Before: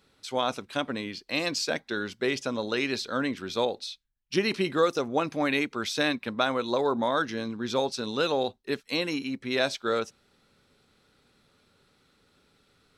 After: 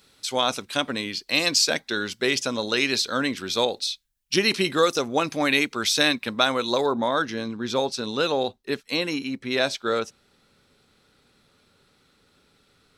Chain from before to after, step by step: treble shelf 2.9 kHz +11 dB, from 6.86 s +2 dB; trim +2.5 dB

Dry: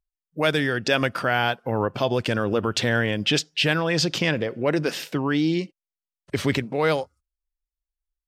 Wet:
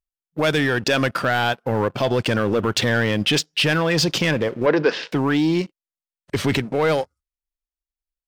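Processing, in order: in parallel at 0 dB: level held to a coarse grid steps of 14 dB; on the sum: waveshaping leveller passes 2; 4.66–5.12 s: cabinet simulation 200–4900 Hz, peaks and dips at 460 Hz +7 dB, 1 kHz +6 dB, 1.6 kHz +5 dB; trim -6.5 dB

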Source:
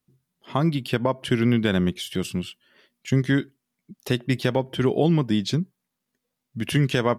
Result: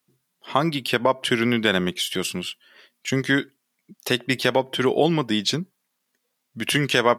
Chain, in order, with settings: high-pass 650 Hz 6 dB/octave; trim +7.5 dB

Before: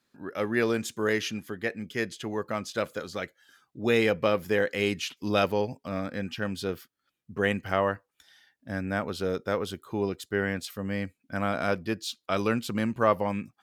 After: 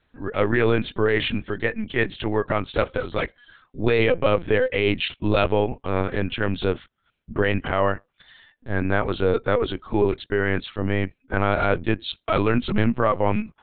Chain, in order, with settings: peak limiter -18 dBFS, peak gain reduction 8.5 dB; LPC vocoder at 8 kHz pitch kept; trim +9 dB

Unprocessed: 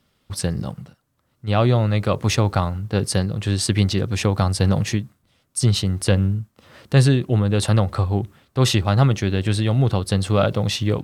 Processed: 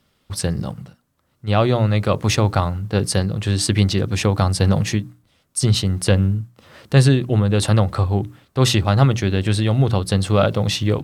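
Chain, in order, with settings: hum notches 60/120/180/240/300 Hz; trim +2 dB

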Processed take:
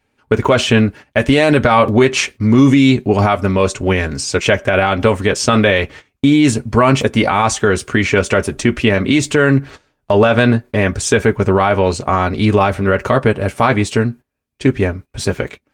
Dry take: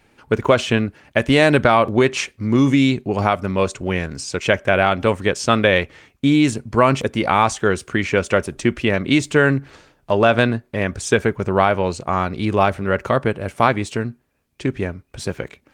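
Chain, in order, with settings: gate -38 dBFS, range -17 dB; comb of notches 170 Hz; loudness maximiser +10 dB; trim -1 dB

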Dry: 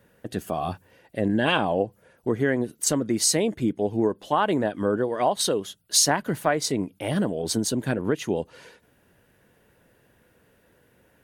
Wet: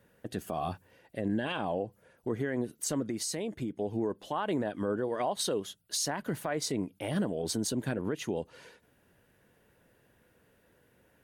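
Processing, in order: peak limiter -17 dBFS, peak gain reduction 10 dB; 3.05–3.79 s: compression, threshold -26 dBFS, peak gain reduction 5.5 dB; trim -5 dB

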